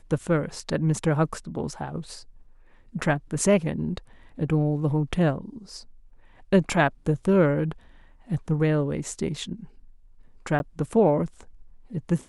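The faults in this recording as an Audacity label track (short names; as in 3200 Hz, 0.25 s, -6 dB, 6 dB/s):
10.590000	10.600000	gap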